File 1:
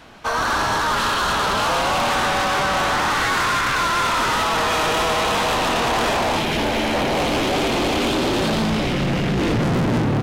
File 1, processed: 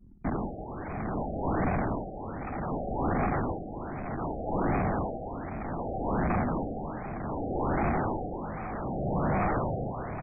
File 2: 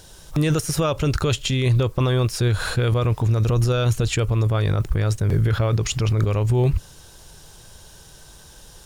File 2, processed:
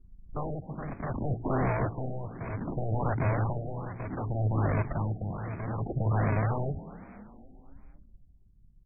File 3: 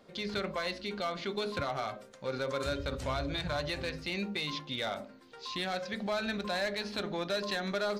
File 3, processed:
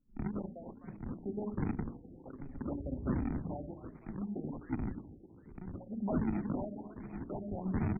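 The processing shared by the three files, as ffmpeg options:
-filter_complex "[0:a]lowpass=5600,aresample=16000,acrusher=samples=17:mix=1:aa=0.000001:lfo=1:lforange=27.2:lforate=1.3,aresample=44100,anlmdn=6.31,equalizer=f=250:t=o:w=1:g=7,equalizer=f=500:t=o:w=1:g=-6,equalizer=f=4000:t=o:w=1:g=3,acrossover=split=120|3600[s0][s1][s2];[s0]acompressor=threshold=0.02:ratio=8[s3];[s1]aeval=exprs='0.075*(abs(mod(val(0)/0.075+3,4)-2)-1)':c=same[s4];[s2]alimiter=limit=0.0708:level=0:latency=1:release=73[s5];[s3][s4][s5]amix=inputs=3:normalize=0,bandreject=f=58.97:t=h:w=4,bandreject=f=117.94:t=h:w=4,bandreject=f=176.91:t=h:w=4,bandreject=f=235.88:t=h:w=4,bandreject=f=294.85:t=h:w=4,bandreject=f=353.82:t=h:w=4,bandreject=f=412.79:t=h:w=4,tremolo=f=0.64:d=0.7,asplit=6[s6][s7][s8][s9][s10][s11];[s7]adelay=254,afreqshift=33,volume=0.15[s12];[s8]adelay=508,afreqshift=66,volume=0.0871[s13];[s9]adelay=762,afreqshift=99,volume=0.0501[s14];[s10]adelay=1016,afreqshift=132,volume=0.0292[s15];[s11]adelay=1270,afreqshift=165,volume=0.017[s16];[s6][s12][s13][s14][s15][s16]amix=inputs=6:normalize=0,afftfilt=real='re*lt(b*sr/1024,780*pow(2600/780,0.5+0.5*sin(2*PI*1.3*pts/sr)))':imag='im*lt(b*sr/1024,780*pow(2600/780,0.5+0.5*sin(2*PI*1.3*pts/sr)))':win_size=1024:overlap=0.75"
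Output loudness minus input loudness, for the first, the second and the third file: -12.5 LU, -10.5 LU, -4.5 LU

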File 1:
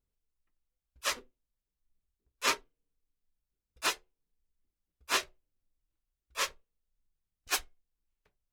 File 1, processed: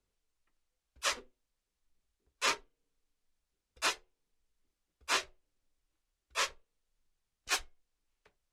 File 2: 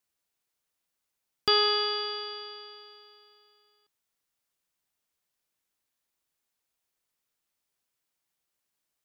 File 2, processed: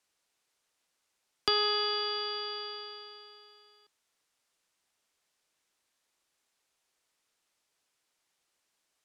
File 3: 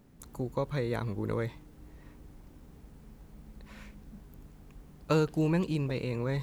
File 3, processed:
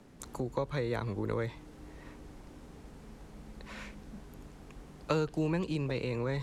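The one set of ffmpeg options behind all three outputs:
-filter_complex "[0:a]acrossover=split=120[s0][s1];[s1]acompressor=threshold=0.00891:ratio=2[s2];[s0][s2]amix=inputs=2:normalize=0,lowpass=9100,acrossover=split=270[s3][s4];[s4]acontrast=80[s5];[s3][s5]amix=inputs=2:normalize=0"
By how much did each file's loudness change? -1.0 LU, -4.5 LU, -3.0 LU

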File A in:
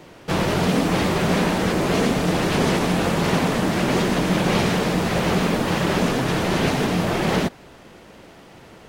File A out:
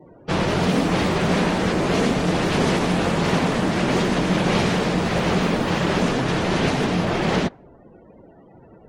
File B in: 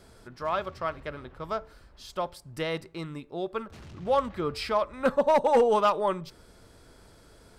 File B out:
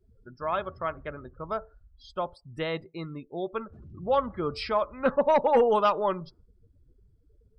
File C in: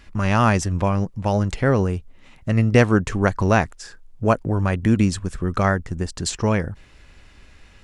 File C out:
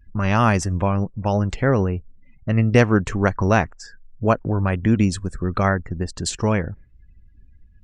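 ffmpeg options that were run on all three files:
-af "afftdn=nr=35:nf=-43"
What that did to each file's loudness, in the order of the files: 0.0 LU, 0.0 LU, 0.0 LU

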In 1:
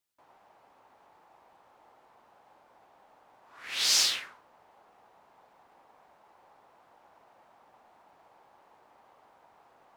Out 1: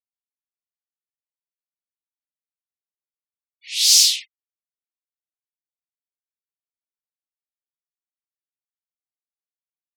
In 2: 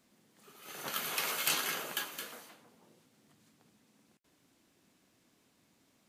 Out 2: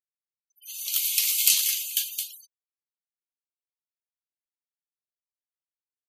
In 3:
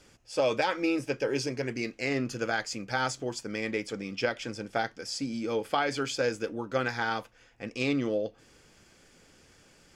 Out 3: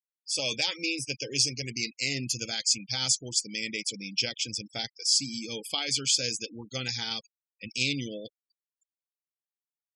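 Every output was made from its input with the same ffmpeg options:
-af "aexciter=amount=7.2:drive=8.1:freq=2300,afftfilt=real='re*gte(hypot(re,im),0.0447)':imag='im*gte(hypot(re,im),0.0447)':win_size=1024:overlap=0.75,bass=f=250:g=14,treble=f=4000:g=3,volume=0.251"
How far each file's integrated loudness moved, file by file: +12.0 LU, +12.0 LU, +2.5 LU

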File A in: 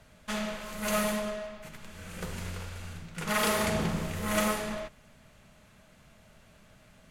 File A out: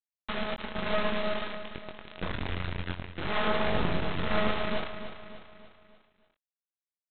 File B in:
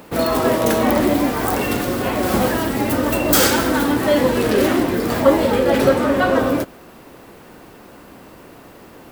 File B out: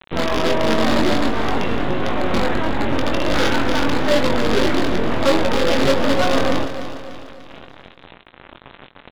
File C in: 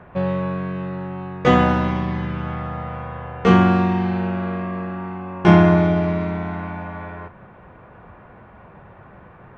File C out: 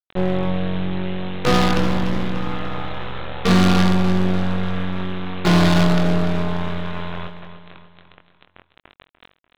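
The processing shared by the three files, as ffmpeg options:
-filter_complex "[0:a]agate=range=0.0224:threshold=0.00631:ratio=3:detection=peak,lowpass=2300,lowshelf=f=66:g=5.5,aresample=8000,acrusher=bits=3:dc=4:mix=0:aa=0.000001,aresample=44100,asoftclip=type=hard:threshold=0.168,asplit=2[s0][s1];[s1]adelay=22,volume=0.501[s2];[s0][s2]amix=inputs=2:normalize=0,aecho=1:1:294|588|882|1176|1470:0.282|0.138|0.0677|0.0332|0.0162,volume=1.33"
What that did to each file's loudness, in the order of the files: -0.5 LU, -2.0 LU, -0.5 LU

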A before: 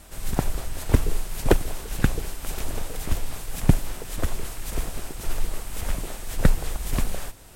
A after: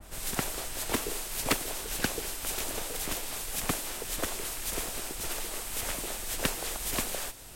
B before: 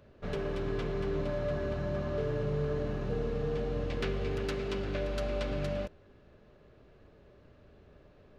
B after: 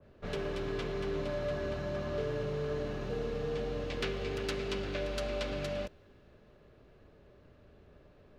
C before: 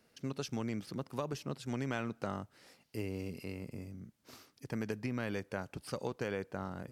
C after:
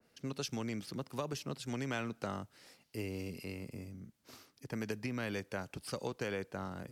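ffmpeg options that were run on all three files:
-filter_complex "[0:a]acrossover=split=250|800|4700[s0][s1][s2][s3];[s0]acompressor=threshold=0.0141:ratio=6[s4];[s4][s1][s2][s3]amix=inputs=4:normalize=0,aeval=exprs='0.141*(abs(mod(val(0)/0.141+3,4)-2)-1)':c=same,adynamicequalizer=threshold=0.00224:dfrequency=2100:dqfactor=0.7:tfrequency=2100:tqfactor=0.7:attack=5:release=100:ratio=0.375:range=2.5:mode=boostabove:tftype=highshelf,volume=0.891"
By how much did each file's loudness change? -3.5 LU, -2.0 LU, -0.5 LU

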